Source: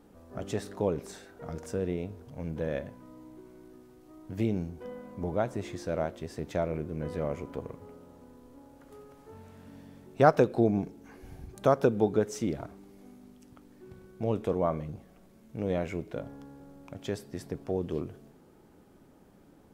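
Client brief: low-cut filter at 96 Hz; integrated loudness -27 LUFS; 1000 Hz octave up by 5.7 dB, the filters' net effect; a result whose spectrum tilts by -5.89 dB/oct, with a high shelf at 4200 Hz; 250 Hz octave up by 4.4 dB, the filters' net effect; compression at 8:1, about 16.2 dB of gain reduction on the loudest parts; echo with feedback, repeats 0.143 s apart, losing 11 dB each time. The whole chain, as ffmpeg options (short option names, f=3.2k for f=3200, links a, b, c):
-af "highpass=96,equalizer=f=250:t=o:g=5.5,equalizer=f=1k:t=o:g=8.5,highshelf=f=4.2k:g=-5.5,acompressor=threshold=-27dB:ratio=8,aecho=1:1:143|286|429:0.282|0.0789|0.0221,volume=8.5dB"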